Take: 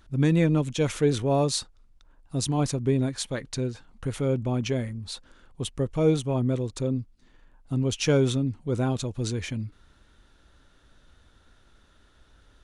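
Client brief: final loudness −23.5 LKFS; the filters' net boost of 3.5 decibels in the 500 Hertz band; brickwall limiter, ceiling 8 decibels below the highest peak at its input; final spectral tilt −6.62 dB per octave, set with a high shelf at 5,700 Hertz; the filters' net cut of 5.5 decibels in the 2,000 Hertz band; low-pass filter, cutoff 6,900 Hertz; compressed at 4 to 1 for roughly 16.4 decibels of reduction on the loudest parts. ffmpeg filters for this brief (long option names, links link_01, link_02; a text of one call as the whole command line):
ffmpeg -i in.wav -af "lowpass=6900,equalizer=frequency=500:width_type=o:gain=4.5,equalizer=frequency=2000:width_type=o:gain=-6.5,highshelf=frequency=5700:gain=-7.5,acompressor=threshold=-35dB:ratio=4,volume=17.5dB,alimiter=limit=-14dB:level=0:latency=1" out.wav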